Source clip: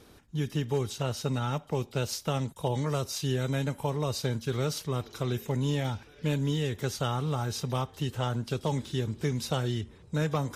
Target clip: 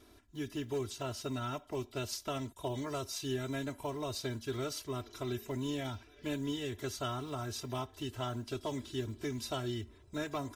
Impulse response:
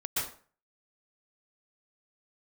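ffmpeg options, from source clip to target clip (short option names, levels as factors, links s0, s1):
-af "acrusher=bits=9:mode=log:mix=0:aa=0.000001,aecho=1:1:3:0.91,volume=0.398"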